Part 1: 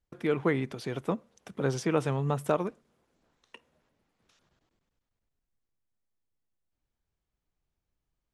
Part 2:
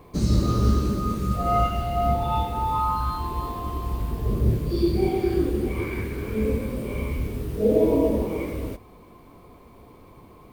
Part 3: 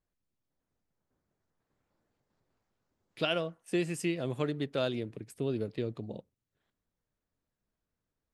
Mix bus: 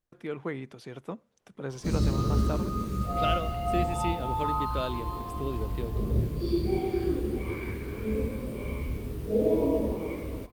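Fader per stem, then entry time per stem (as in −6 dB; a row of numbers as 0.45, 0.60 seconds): −7.5, −5.5, −2.0 decibels; 0.00, 1.70, 0.00 seconds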